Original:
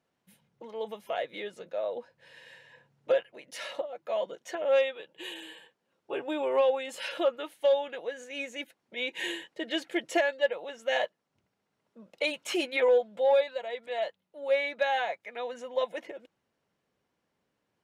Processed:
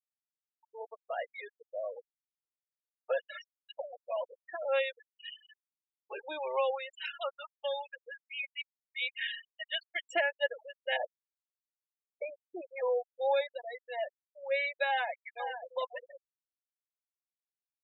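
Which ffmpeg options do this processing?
ffmpeg -i in.wav -filter_complex "[0:a]asettb=1/sr,asplit=3[link_01][link_02][link_03];[link_01]atrim=end=7.064[link_04];[link_02]atrim=start=7.06:end=10.07,asetpts=PTS-STARTPTS,afade=type=in:duration=0.004:curve=qsin,afade=type=out:start_time=3.006:duration=0.004:curve=qsin,highpass=710[link_05];[link_03]atrim=start=10.066[link_06];[link_04][link_05]acrossfade=duration=0.004:curve1=hsin:curve2=qsin[link_07];[link_07][link_06]acrossfade=duration=0.004:curve1=qsin:curve2=hsin,asplit=3[link_08][link_09][link_10];[link_08]afade=type=out:start_time=10.96:duration=0.02[link_11];[link_09]lowpass=1000,afade=type=in:start_time=10.96:duration=0.02,afade=type=out:start_time=13.19:duration=0.02[link_12];[link_10]afade=type=in:start_time=13.19:duration=0.02[link_13];[link_11][link_12][link_13]amix=inputs=3:normalize=0,asplit=2[link_14][link_15];[link_15]afade=type=in:start_time=14.86:duration=0.01,afade=type=out:start_time=15.63:duration=0.01,aecho=0:1:530|1060:0.421697|0.0421697[link_16];[link_14][link_16]amix=inputs=2:normalize=0,asplit=3[link_17][link_18][link_19];[link_17]atrim=end=3.292[link_20];[link_18]atrim=start=3.288:end=3.692,asetpts=PTS-STARTPTS,areverse[link_21];[link_19]atrim=start=3.688[link_22];[link_20][link_21]acrossfade=duration=0.004:curve1=hsin:curve2=hsin[link_23];[link_23][link_22]acrossfade=duration=0.004:curve1=hsin:curve2=hsin,highpass=740,afftfilt=real='re*gte(hypot(re,im),0.0316)':imag='im*gte(hypot(re,im),0.0316)':win_size=1024:overlap=0.75" out.wav

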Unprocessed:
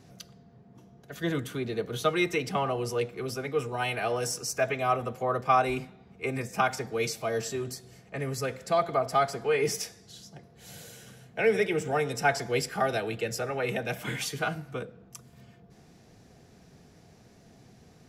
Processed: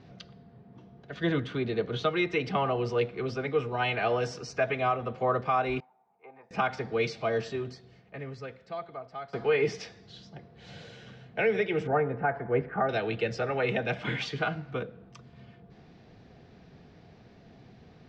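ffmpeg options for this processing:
ffmpeg -i in.wav -filter_complex "[0:a]asettb=1/sr,asplit=3[link_01][link_02][link_03];[link_01]atrim=end=5.804[link_04];[link_02]atrim=start=5.8:end=6.51,asetpts=PTS-STARTPTS,afade=type=in:duration=0.004:curve=qsin,afade=type=out:start_time=0.706:duration=0.004:curve=qsin,bandpass=frequency=860:width_type=q:width=8.2[link_05];[link_03]atrim=start=6.506[link_06];[link_04][link_05]acrossfade=duration=0.004:curve1=hsin:curve2=qsin[link_07];[link_07][link_06]acrossfade=duration=0.004:curve1=qsin:curve2=hsin,asettb=1/sr,asplit=3[link_08][link_09][link_10];[link_08]atrim=end=11.874[link_11];[link_09]atrim=start=11.87:end=12.89,asetpts=PTS-STARTPTS,afade=type=in:duration=0.004:curve=qsin,afade=type=out:start_time=1.016:duration=0.004:curve=qsin,lowpass=frequency=1700:width=0.5412,lowpass=frequency=1700:width=1.3066[link_12];[link_10]atrim=start=12.886[link_13];[link_11][link_12]acrossfade=duration=0.004:curve1=hsin:curve2=qsin[link_14];[link_14][link_13]acrossfade=duration=0.004:curve1=qsin:curve2=hsin,asplit=2[link_15][link_16];[link_15]atrim=end=9.33,asetpts=PTS-STARTPTS,afade=type=out:start_time=7.25:duration=2.08:curve=qua:silence=0.133352[link_17];[link_16]atrim=start=9.33,asetpts=PTS-STARTPTS,afade=type=in:duration=0.004:curve=hsin:silence=0.133352[link_18];[link_17][link_18]concat=n=2:v=0:a=1,lowpass=frequency=4200:width=0.5412,lowpass=frequency=4200:width=1.3066,alimiter=limit=-18dB:level=0:latency=1:release=296,volume=2dB" out.wav

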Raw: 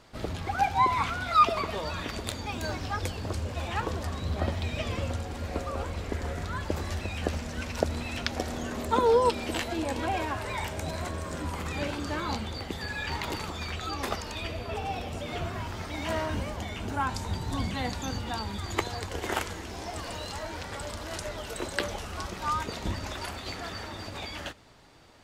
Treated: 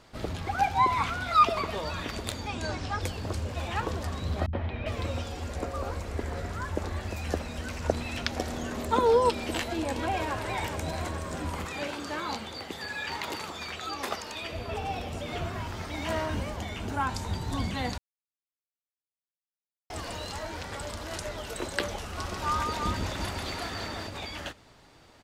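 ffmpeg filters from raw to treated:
ffmpeg -i in.wav -filter_complex "[0:a]asettb=1/sr,asplit=3[link_01][link_02][link_03];[link_01]atrim=end=2.474[link_04];[link_02]atrim=start=2.47:end=3.01,asetpts=PTS-STARTPTS,afade=type=in:duration=0.004:curve=qsin,afade=type=out:start_time=0.536:duration=0.004:curve=qsin,lowpass=frequency=9500:width=0.5412,lowpass=frequency=9500:width=1.3066[link_05];[link_03]atrim=start=3.006[link_06];[link_04][link_05]acrossfade=duration=0.004:curve1=hsin:curve2=qsin[link_07];[link_07][link_06]acrossfade=duration=0.004:curve1=qsin:curve2=hsin,asettb=1/sr,asplit=3[link_08][link_09][link_10];[link_08]atrim=end=4.464[link_11];[link_09]atrim=start=4.46:end=7.93,asetpts=PTS-STARTPTS,afade=type=in:duration=0.004:curve=qsin,afade=type=out:start_time=3.466:duration=0.004:curve=qsin,acrossover=split=160|3000[link_12][link_13][link_14];[link_13]adelay=70[link_15];[link_14]adelay=400[link_16];[link_12][link_15][link_16]amix=inputs=3:normalize=0,atrim=end_sample=153027[link_17];[link_10]atrim=start=7.926[link_18];[link_11][link_17]acrossfade=duration=0.004:curve1=hsin:curve2=qsin[link_19];[link_19][link_18]acrossfade=duration=0.004:curve1=qsin:curve2=hsin,asplit=2[link_20][link_21];[link_21]afade=type=in:start_time=9.76:duration=0.01,afade=type=out:start_time=10.34:duration=0.01,aecho=0:1:420|840|1260|1680|2100|2520|2940|3360:0.375837|0.225502|0.135301|0.0811809|0.0487085|0.0292251|0.0175351|0.010521[link_22];[link_20][link_22]amix=inputs=2:normalize=0,asettb=1/sr,asplit=3[link_23][link_24][link_25];[link_23]atrim=end=11.654[link_26];[link_24]atrim=start=11.65:end=14.53,asetpts=PTS-STARTPTS,afade=type=in:duration=0.004:curve=qsin,afade=type=out:start_time=2.876:duration=0.004:curve=qsin,highpass=frequency=330:poles=1[link_27];[link_25]atrim=start=14.526[link_28];[link_26][link_27]acrossfade=duration=0.004:curve1=hsin:curve2=qsin[link_29];[link_29][link_28]acrossfade=duration=0.004:curve1=qsin:curve2=hsin,asettb=1/sr,asplit=3[link_30][link_31][link_32];[link_30]atrim=end=22.044[link_33];[link_31]atrim=start=22.04:end=24.07,asetpts=PTS-STARTPTS,afade=type=in:duration=0.004:curve=qsin,afade=type=out:start_time=2.026:duration=0.004:curve=qsin,aecho=1:1:140|339:0.631|0.596,atrim=end_sample=89523[link_34];[link_32]atrim=start=24.066[link_35];[link_33][link_34]acrossfade=duration=0.004:curve1=hsin:curve2=qsin[link_36];[link_36][link_35]acrossfade=duration=0.004:curve1=qsin:curve2=hsin,asplit=3[link_37][link_38][link_39];[link_37]atrim=end=17.98,asetpts=PTS-STARTPTS,afade=type=out:start_time=17.976:duration=0.004:curve=hsin[link_40];[link_38]atrim=start=17.98:end=19.9,asetpts=PTS-STARTPTS,volume=0[link_41];[link_39]atrim=start=19.9,asetpts=PTS-STARTPTS,afade=type=in:duration=0.004:curve=hsin[link_42];[link_40][link_41][link_42]concat=n=3:v=0:a=1" out.wav

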